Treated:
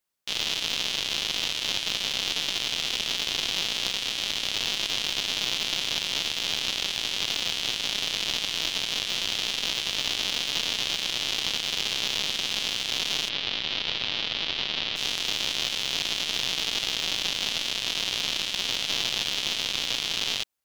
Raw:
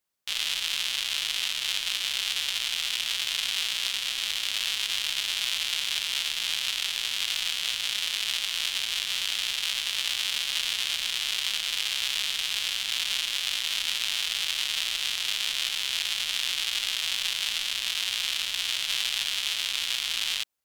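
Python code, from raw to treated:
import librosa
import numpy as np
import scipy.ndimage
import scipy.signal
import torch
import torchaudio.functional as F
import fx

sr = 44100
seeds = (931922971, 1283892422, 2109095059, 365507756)

y = fx.tracing_dist(x, sr, depth_ms=0.042)
y = fx.lowpass(y, sr, hz=4400.0, slope=24, at=(13.28, 14.95), fade=0.02)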